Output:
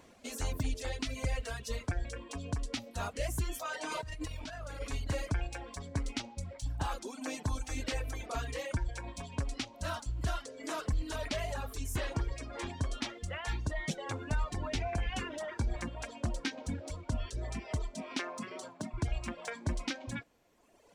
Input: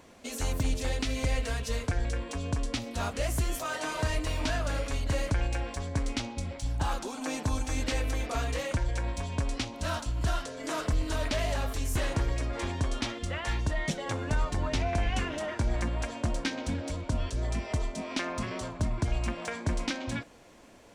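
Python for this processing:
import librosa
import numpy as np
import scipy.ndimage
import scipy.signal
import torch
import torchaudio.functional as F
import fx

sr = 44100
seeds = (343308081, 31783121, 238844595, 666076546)

y = fx.over_compress(x, sr, threshold_db=-34.0, ratio=-1.0, at=(3.9, 4.8), fade=0.02)
y = fx.highpass(y, sr, hz=170.0, slope=24, at=(18.2, 18.94))
y = fx.dereverb_blind(y, sr, rt60_s=1.6)
y = y * 10.0 ** (-3.5 / 20.0)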